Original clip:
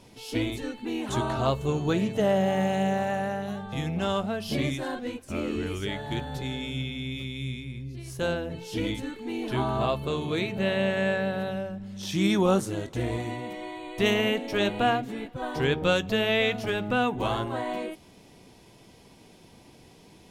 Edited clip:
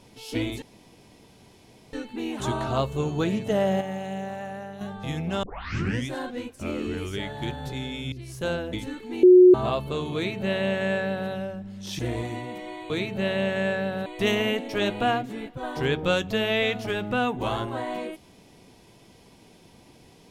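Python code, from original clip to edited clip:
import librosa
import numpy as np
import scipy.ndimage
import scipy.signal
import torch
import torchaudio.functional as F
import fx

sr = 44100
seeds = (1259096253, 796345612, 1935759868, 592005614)

y = fx.edit(x, sr, fx.insert_room_tone(at_s=0.62, length_s=1.31),
    fx.clip_gain(start_s=2.5, length_s=1.0, db=-7.0),
    fx.tape_start(start_s=4.12, length_s=0.65),
    fx.cut(start_s=6.81, length_s=1.09),
    fx.cut(start_s=8.51, length_s=0.38),
    fx.bleep(start_s=9.39, length_s=0.31, hz=364.0, db=-8.5),
    fx.duplicate(start_s=10.31, length_s=1.16, to_s=13.85),
    fx.cut(start_s=12.15, length_s=0.79), tone=tone)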